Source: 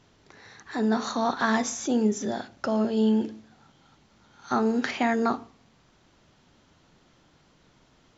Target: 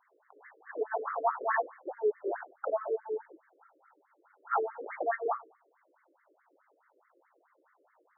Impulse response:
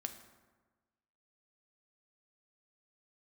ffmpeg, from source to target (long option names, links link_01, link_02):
-af "flanger=delay=19:depth=3.9:speed=0.62,afftfilt=real='re*between(b*sr/1024,410*pow(1600/410,0.5+0.5*sin(2*PI*4.7*pts/sr))/1.41,410*pow(1600/410,0.5+0.5*sin(2*PI*4.7*pts/sr))*1.41)':imag='im*between(b*sr/1024,410*pow(1600/410,0.5+0.5*sin(2*PI*4.7*pts/sr))/1.41,410*pow(1600/410,0.5+0.5*sin(2*PI*4.7*pts/sr))*1.41)':win_size=1024:overlap=0.75,volume=3.5dB"